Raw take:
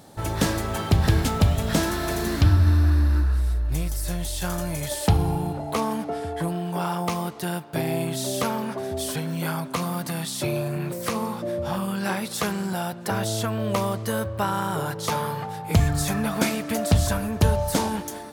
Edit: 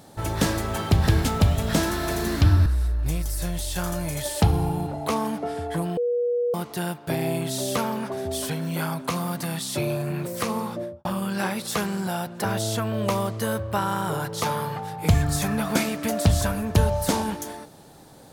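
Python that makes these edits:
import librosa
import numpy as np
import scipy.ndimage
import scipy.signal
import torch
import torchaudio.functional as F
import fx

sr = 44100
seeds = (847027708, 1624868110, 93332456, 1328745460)

y = fx.studio_fade_out(x, sr, start_s=11.37, length_s=0.34)
y = fx.edit(y, sr, fx.cut(start_s=2.66, length_s=0.66),
    fx.bleep(start_s=6.63, length_s=0.57, hz=483.0, db=-20.5), tone=tone)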